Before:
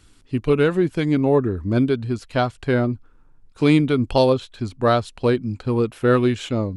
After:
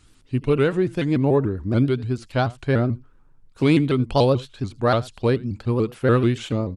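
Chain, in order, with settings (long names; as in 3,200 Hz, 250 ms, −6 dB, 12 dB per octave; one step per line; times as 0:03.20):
parametric band 130 Hz +6.5 dB 0.21 octaves
on a send: single-tap delay 82 ms −22.5 dB
on the sum: pitch modulation by a square or saw wave saw up 6.9 Hz, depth 160 cents
level −2 dB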